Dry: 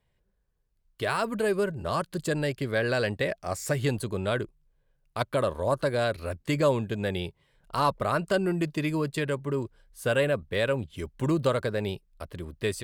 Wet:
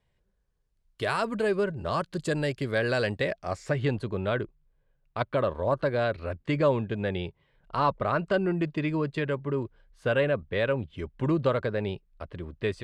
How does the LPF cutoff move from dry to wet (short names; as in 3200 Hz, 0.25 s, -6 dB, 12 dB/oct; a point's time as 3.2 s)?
1.11 s 8800 Hz
1.64 s 4500 Hz
2.45 s 8400 Hz
3.1 s 8400 Hz
3.73 s 3100 Hz